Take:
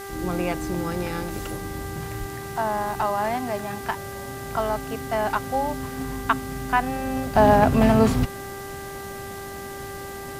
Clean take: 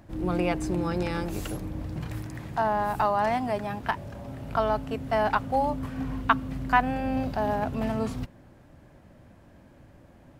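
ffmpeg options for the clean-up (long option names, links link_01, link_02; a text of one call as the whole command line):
ffmpeg -i in.wav -filter_complex "[0:a]bandreject=frequency=395.1:width_type=h:width=4,bandreject=frequency=790.2:width_type=h:width=4,bandreject=frequency=1185.3:width_type=h:width=4,bandreject=frequency=1580.4:width_type=h:width=4,bandreject=frequency=1975.5:width_type=h:width=4,asplit=3[link_01][link_02][link_03];[link_01]afade=type=out:start_time=2.19:duration=0.02[link_04];[link_02]highpass=frequency=140:width=0.5412,highpass=frequency=140:width=1.3066,afade=type=in:start_time=2.19:duration=0.02,afade=type=out:start_time=2.31:duration=0.02[link_05];[link_03]afade=type=in:start_time=2.31:duration=0.02[link_06];[link_04][link_05][link_06]amix=inputs=3:normalize=0,afwtdn=0.0071,asetnsamples=nb_out_samples=441:pad=0,asendcmd='7.35 volume volume -11.5dB',volume=0dB" out.wav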